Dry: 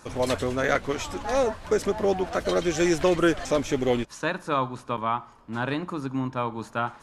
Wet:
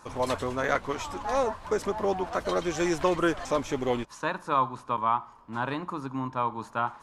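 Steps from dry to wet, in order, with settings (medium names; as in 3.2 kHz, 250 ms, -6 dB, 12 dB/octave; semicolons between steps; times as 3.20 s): peaking EQ 1 kHz +9 dB 0.68 oct; trim -5 dB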